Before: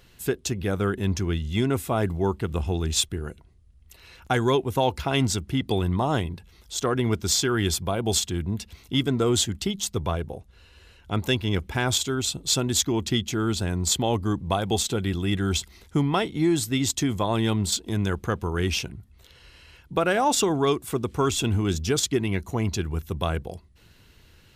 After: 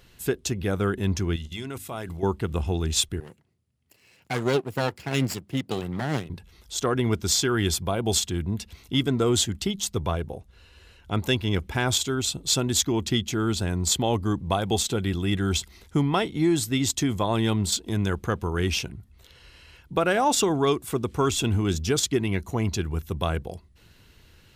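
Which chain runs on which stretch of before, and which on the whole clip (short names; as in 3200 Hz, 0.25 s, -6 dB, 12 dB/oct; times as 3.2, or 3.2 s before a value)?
1.36–2.23 level quantiser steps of 15 dB + tilt shelf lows -4.5 dB, about 1400 Hz + notches 50/100/150/200/250/300 Hz
3.2–6.3 minimum comb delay 0.41 ms + HPF 110 Hz 24 dB/oct + upward expander, over -33 dBFS
whole clip: dry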